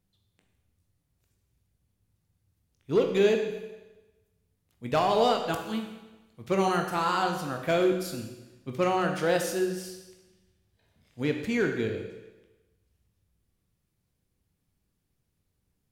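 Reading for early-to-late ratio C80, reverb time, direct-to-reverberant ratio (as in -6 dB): 8.0 dB, 1.1 s, 3.0 dB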